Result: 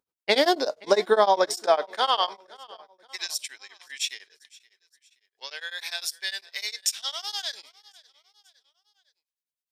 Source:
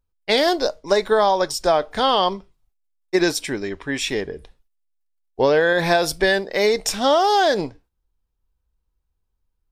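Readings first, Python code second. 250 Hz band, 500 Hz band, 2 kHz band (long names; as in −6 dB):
−12.0 dB, −7.5 dB, −9.0 dB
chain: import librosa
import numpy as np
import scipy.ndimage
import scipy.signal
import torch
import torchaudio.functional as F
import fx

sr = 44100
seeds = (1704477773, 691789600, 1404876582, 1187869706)

y = fx.filter_sweep_highpass(x, sr, from_hz=250.0, to_hz=3100.0, start_s=1.17, end_s=3.21, q=0.73)
y = fx.echo_feedback(y, sr, ms=526, feedback_pct=44, wet_db=-22.0)
y = y * np.abs(np.cos(np.pi * 9.9 * np.arange(len(y)) / sr))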